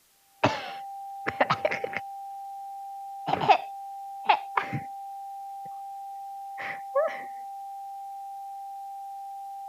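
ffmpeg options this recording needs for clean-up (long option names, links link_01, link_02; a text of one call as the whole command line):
ffmpeg -i in.wav -af "bandreject=frequency=790:width=30,agate=range=-21dB:threshold=-31dB" out.wav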